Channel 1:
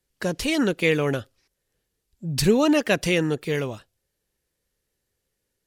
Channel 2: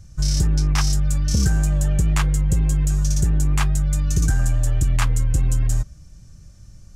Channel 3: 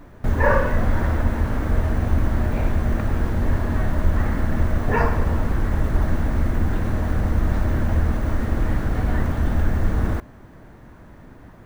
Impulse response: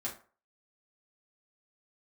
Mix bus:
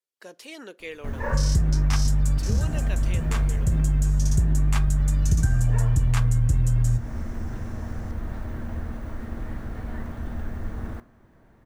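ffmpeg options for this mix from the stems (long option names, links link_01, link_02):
-filter_complex "[0:a]highpass=380,volume=-16dB,asplit=3[link_01][link_02][link_03];[link_02]volume=-17.5dB[link_04];[1:a]equalizer=frequency=93:width_type=o:width=1.7:gain=8.5,adelay=1150,volume=-2.5dB,asplit=2[link_05][link_06];[link_06]volume=-9.5dB[link_07];[2:a]adelay=800,volume=-13dB,asplit=2[link_08][link_09];[link_09]volume=-11.5dB[link_10];[link_03]apad=whole_len=357620[link_11];[link_05][link_11]sidechaincompress=threshold=-49dB:ratio=8:attack=16:release=250[link_12];[3:a]atrim=start_sample=2205[link_13];[link_04][link_07][link_10]amix=inputs=3:normalize=0[link_14];[link_14][link_13]afir=irnorm=-1:irlink=0[link_15];[link_01][link_12][link_08][link_15]amix=inputs=4:normalize=0,acompressor=threshold=-18dB:ratio=3"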